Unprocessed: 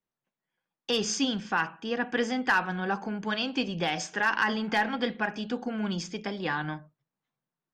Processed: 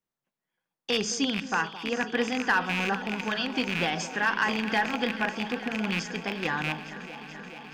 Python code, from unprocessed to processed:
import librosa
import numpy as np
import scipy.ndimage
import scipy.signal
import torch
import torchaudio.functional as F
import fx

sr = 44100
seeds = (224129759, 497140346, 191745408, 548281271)

y = fx.rattle_buzz(x, sr, strikes_db=-35.0, level_db=-18.0)
y = fx.echo_alternate(y, sr, ms=215, hz=1100.0, feedback_pct=89, wet_db=-13.0)